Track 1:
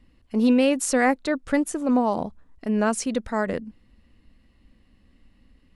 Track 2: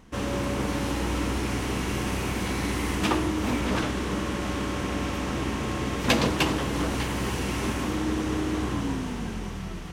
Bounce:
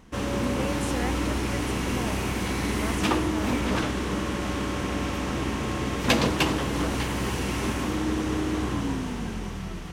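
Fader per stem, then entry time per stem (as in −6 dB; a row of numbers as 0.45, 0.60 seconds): −13.5, +0.5 decibels; 0.00, 0.00 seconds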